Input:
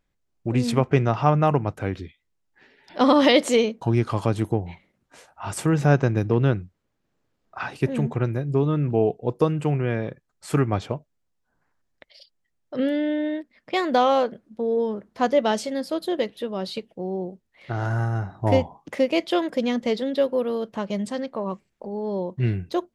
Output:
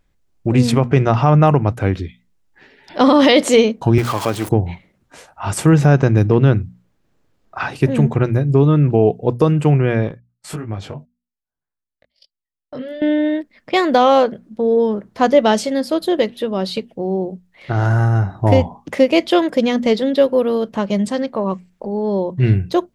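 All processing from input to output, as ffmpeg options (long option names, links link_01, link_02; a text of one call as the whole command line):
ffmpeg -i in.wav -filter_complex "[0:a]asettb=1/sr,asplit=3[link_01][link_02][link_03];[link_01]atrim=end=3.984[link_04];[link_02]atrim=start=3.98:end=4.49,asetpts=PTS-STARTPTS,afade=type=in:duration=0.004:curve=qsin,afade=type=out:start_time=0.506:duration=0.004:curve=qsin,aeval=exprs='val(0)+0.5*0.0355*sgn(val(0))':channel_layout=same,highpass=frequency=570:poles=1[link_05];[link_03]atrim=start=4.486[link_06];[link_04][link_05]acrossfade=duration=0.004:curve1=hsin:curve2=qsin[link_07];[link_07][link_06]acrossfade=duration=0.004:curve1=qsin:curve2=hsin,asettb=1/sr,asplit=3[link_08][link_09][link_10];[link_08]atrim=end=10.084[link_11];[link_09]atrim=start=10.08:end=13.02,asetpts=PTS-STARTPTS,afade=type=in:duration=0.004:curve=qsin,afade=type=out:start_time=2.936:duration=0.004:curve=qsin,agate=range=-26dB:threshold=-48dB:ratio=16:release=100:detection=peak,acompressor=threshold=-29dB:ratio=6:attack=3.2:release=140:knee=1:detection=peak,flanger=delay=18.5:depth=2.4:speed=1.7[link_12];[link_10]atrim=start=13.016[link_13];[link_11][link_12]acrossfade=duration=0.004:curve1=hsin:curve2=qsin[link_14];[link_14][link_13]acrossfade=duration=0.004:curve1=qsin:curve2=hsin,lowshelf=frequency=160:gain=5.5,bandreject=frequency=60:width_type=h:width=6,bandreject=frequency=120:width_type=h:width=6,bandreject=frequency=180:width_type=h:width=6,bandreject=frequency=240:width_type=h:width=6,alimiter=level_in=8.5dB:limit=-1dB:release=50:level=0:latency=1,volume=-1dB" out.wav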